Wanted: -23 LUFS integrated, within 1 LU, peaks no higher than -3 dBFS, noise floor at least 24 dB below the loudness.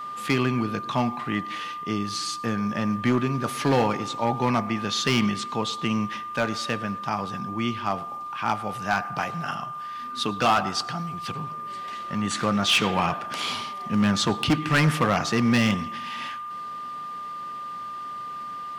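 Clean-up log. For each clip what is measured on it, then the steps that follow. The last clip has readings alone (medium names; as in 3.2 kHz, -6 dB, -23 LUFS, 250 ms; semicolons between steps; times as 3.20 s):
clipped samples 1.0%; clipping level -15.0 dBFS; steady tone 1.2 kHz; tone level -32 dBFS; loudness -26.0 LUFS; peak level -15.0 dBFS; loudness target -23.0 LUFS
-> clip repair -15 dBFS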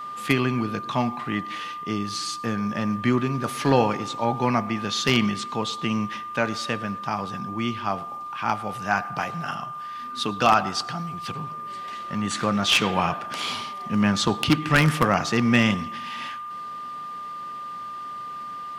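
clipped samples 0.0%; steady tone 1.2 kHz; tone level -32 dBFS
-> band-stop 1.2 kHz, Q 30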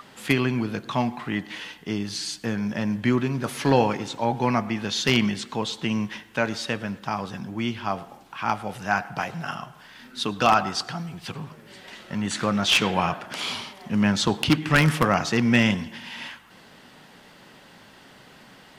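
steady tone not found; loudness -25.0 LUFS; peak level -5.5 dBFS; loudness target -23.0 LUFS
-> trim +2 dB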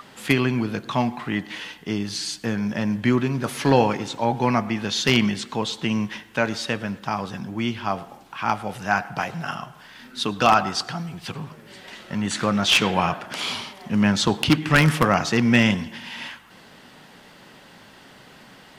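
loudness -23.0 LUFS; peak level -3.5 dBFS; noise floor -48 dBFS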